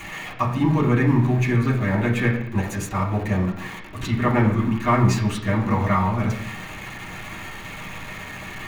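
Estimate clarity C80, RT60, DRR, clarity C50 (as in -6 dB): 10.5 dB, 0.70 s, -6.5 dB, 8.0 dB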